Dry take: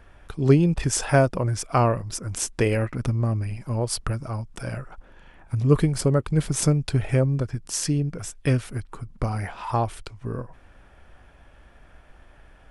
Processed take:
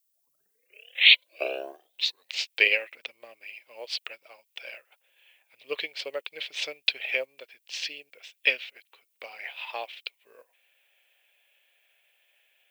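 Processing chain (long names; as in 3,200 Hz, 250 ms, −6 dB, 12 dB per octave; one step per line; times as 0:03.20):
turntable start at the beginning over 2.78 s
elliptic band-pass filter 510–3,900 Hz, stop band 80 dB
high shelf with overshoot 1,800 Hz +12 dB, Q 3
background noise violet −56 dBFS
expander for the loud parts 1.5 to 1, over −49 dBFS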